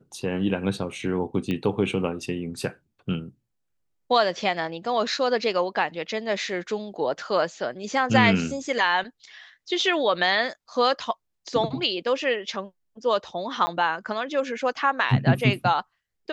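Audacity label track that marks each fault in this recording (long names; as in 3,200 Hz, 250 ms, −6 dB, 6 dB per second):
1.510000	1.510000	click −17 dBFS
13.660000	13.670000	drop-out 10 ms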